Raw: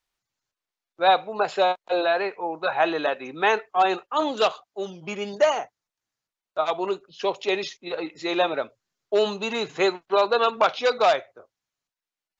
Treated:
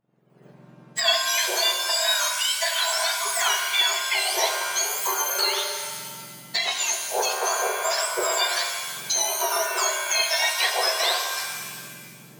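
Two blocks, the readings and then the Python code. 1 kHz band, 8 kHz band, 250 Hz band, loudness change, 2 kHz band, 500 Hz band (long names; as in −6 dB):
−3.5 dB, can't be measured, −13.0 dB, +2.0 dB, +4.0 dB, −7.5 dB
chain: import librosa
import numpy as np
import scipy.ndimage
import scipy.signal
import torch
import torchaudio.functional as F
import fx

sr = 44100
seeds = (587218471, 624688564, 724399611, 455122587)

y = fx.octave_mirror(x, sr, pivot_hz=1600.0)
y = fx.recorder_agc(y, sr, target_db=-17.0, rise_db_per_s=65.0, max_gain_db=30)
y = fx.rev_shimmer(y, sr, seeds[0], rt60_s=1.6, semitones=7, shimmer_db=-2, drr_db=5.0)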